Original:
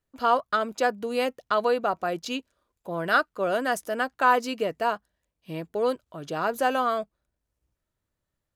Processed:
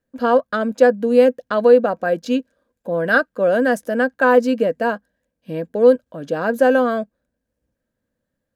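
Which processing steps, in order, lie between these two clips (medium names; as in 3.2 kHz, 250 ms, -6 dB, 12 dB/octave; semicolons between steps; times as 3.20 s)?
small resonant body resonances 240/500/1600 Hz, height 16 dB, ringing for 35 ms; trim -1 dB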